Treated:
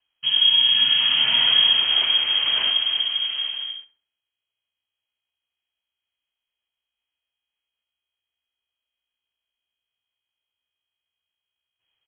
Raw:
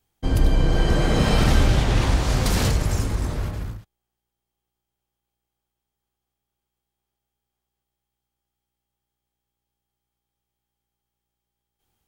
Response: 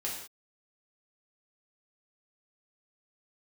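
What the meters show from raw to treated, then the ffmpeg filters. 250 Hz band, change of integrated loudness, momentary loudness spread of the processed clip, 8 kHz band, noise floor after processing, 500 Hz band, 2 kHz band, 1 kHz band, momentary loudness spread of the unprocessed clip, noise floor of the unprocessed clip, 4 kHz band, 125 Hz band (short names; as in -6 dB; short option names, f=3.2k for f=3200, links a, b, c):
under -20 dB, +5.0 dB, 12 LU, under -40 dB, under -85 dBFS, -18.5 dB, +3.5 dB, -7.5 dB, 11 LU, -84 dBFS, +18.0 dB, under -30 dB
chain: -filter_complex "[0:a]lowpass=f=2.8k:t=q:w=0.5098,lowpass=f=2.8k:t=q:w=0.6013,lowpass=f=2.8k:t=q:w=0.9,lowpass=f=2.8k:t=q:w=2.563,afreqshift=-3300,asplit=2[a][b];[b]adelay=67,lowpass=f=1.7k:p=1,volume=-12dB,asplit=2[c][d];[d]adelay=67,lowpass=f=1.7k:p=1,volume=0.49,asplit=2[e][f];[f]adelay=67,lowpass=f=1.7k:p=1,volume=0.49,asplit=2[g][h];[h]adelay=67,lowpass=f=1.7k:p=1,volume=0.49,asplit=2[i][j];[j]adelay=67,lowpass=f=1.7k:p=1,volume=0.49[k];[a][c][e][g][i][k]amix=inputs=6:normalize=0,volume=-1.5dB"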